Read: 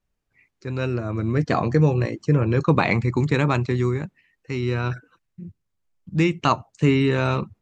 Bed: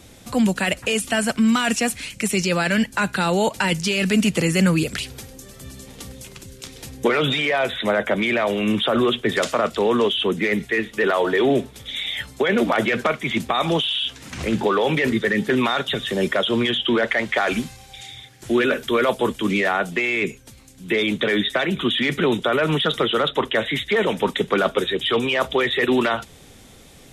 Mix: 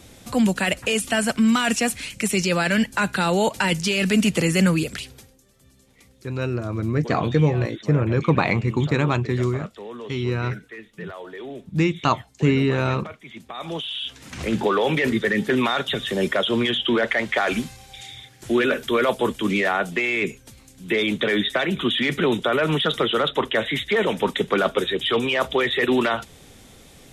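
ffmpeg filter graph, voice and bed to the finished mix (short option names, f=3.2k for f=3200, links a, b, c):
-filter_complex "[0:a]adelay=5600,volume=-0.5dB[a];[1:a]volume=16dB,afade=t=out:st=4.64:d=0.75:silence=0.141254,afade=t=in:st=13.43:d=1.16:silence=0.149624[b];[a][b]amix=inputs=2:normalize=0"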